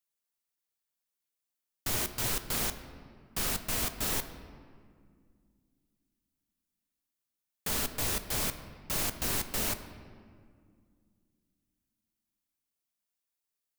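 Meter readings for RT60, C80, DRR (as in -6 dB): 2.1 s, 12.0 dB, 9.0 dB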